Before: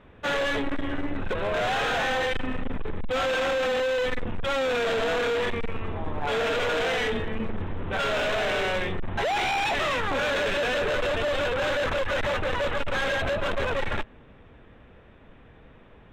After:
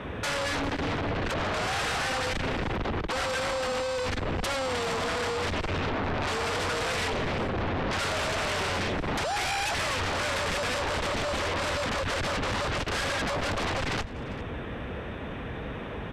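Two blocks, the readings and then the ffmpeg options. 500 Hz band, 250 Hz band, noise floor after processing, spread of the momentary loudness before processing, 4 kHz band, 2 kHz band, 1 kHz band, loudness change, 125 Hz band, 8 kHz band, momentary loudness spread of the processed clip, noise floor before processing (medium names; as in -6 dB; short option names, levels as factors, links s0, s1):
-5.0 dB, 0.0 dB, -36 dBFS, 8 LU, 0.0 dB, -2.5 dB, -1.0 dB, -2.5 dB, +2.5 dB, +6.5 dB, 9 LU, -52 dBFS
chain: -filter_complex "[0:a]highpass=48,equalizer=f=6700:t=o:w=0.84:g=4,bandreject=f=7200:w=7.1,acrossover=split=160[s0][s1];[s1]acompressor=threshold=0.0112:ratio=6[s2];[s0][s2]amix=inputs=2:normalize=0,aeval=exprs='0.0708*sin(PI/2*6.31*val(0)/0.0708)':c=same,aecho=1:1:398:0.112,aresample=32000,aresample=44100,volume=0.708"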